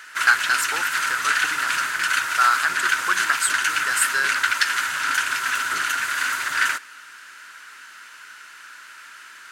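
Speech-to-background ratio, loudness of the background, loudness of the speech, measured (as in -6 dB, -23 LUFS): -1.5 dB, -22.0 LUFS, -23.5 LUFS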